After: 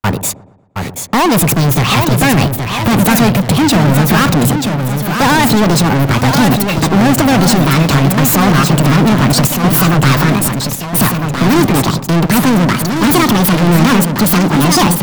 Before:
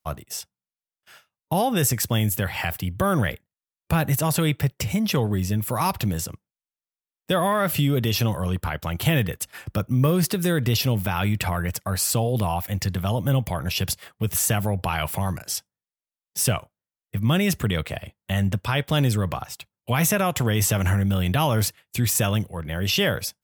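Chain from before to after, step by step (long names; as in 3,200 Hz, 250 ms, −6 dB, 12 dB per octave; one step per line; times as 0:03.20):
gliding playback speed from 132% → 180%
high-shelf EQ 2,300 Hz −11 dB
in parallel at −9 dB: sine wavefolder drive 8 dB, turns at −9 dBFS
on the sum: leveller curve on the samples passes 5
on a send: delay with a low-pass on its return 116 ms, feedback 44%, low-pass 890 Hz, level −13 dB
on the sum: delay with pitch and tempo change per echo 716 ms, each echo −1 semitone, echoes 2, each echo −6 dB
level +2 dB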